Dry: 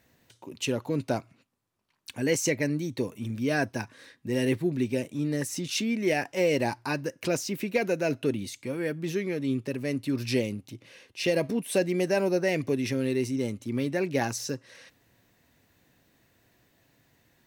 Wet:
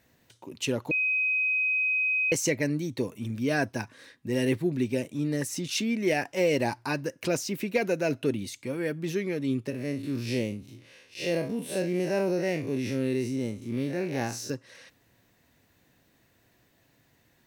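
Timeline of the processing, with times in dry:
0.91–2.32 bleep 2520 Hz -23 dBFS
9.7–14.5 time blur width 98 ms

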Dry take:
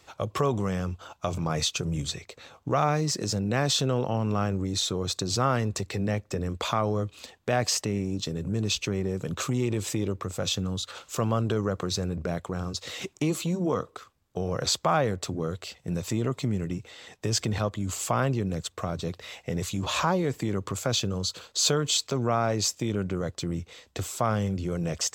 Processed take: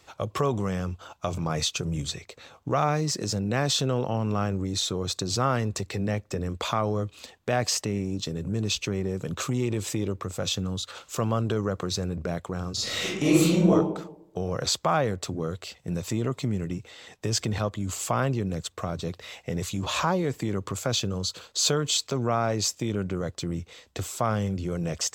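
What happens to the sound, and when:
12.73–13.71 reverb throw, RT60 0.81 s, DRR -8 dB

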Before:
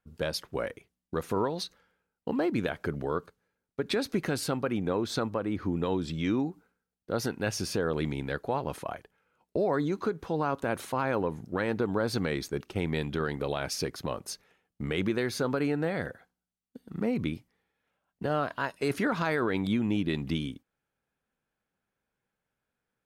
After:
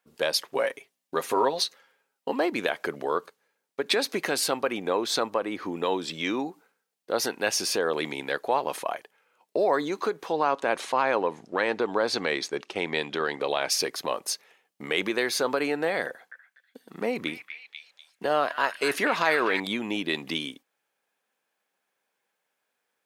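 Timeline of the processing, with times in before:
0.52–2.33 comb 7.4 ms, depth 55%
10.32–13.7 LPF 6700 Hz
16.07–19.6 delay with a stepping band-pass 0.245 s, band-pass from 1900 Hz, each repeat 0.7 oct, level -4.5 dB
whole clip: Bessel high-pass 620 Hz, order 2; bell 1400 Hz -5.5 dB 0.32 oct; gain +9 dB

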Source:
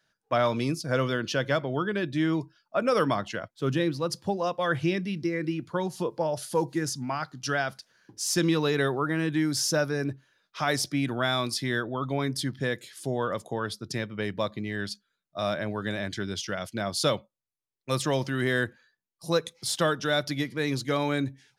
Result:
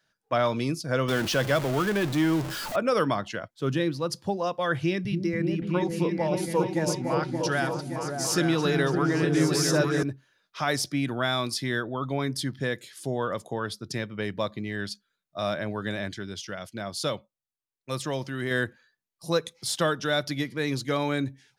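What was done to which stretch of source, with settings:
1.08–2.76 zero-crossing step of -28 dBFS
4.76–10.03 repeats that get brighter 0.286 s, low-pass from 200 Hz, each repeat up 2 oct, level 0 dB
16.13–18.51 gain -4 dB

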